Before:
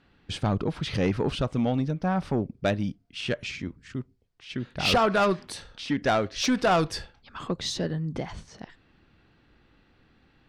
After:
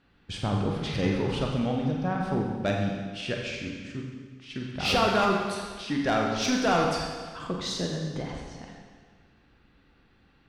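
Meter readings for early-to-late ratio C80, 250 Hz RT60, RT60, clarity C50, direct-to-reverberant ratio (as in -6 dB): 3.0 dB, 1.6 s, 1.6 s, 2.5 dB, -0.5 dB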